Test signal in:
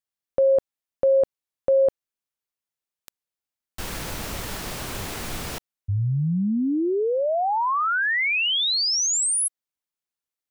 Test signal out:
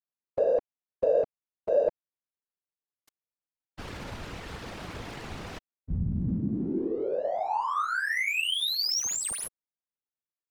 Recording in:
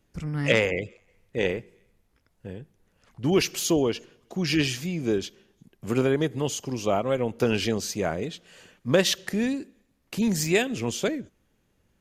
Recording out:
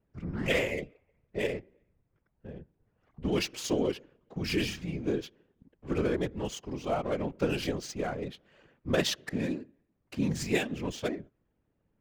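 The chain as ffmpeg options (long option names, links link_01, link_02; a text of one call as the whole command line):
ffmpeg -i in.wav -af "adynamicsmooth=sensitivity=7.5:basefreq=1900,afftfilt=real='hypot(re,im)*cos(2*PI*random(0))':imag='hypot(re,im)*sin(2*PI*random(1))':win_size=512:overlap=0.75" out.wav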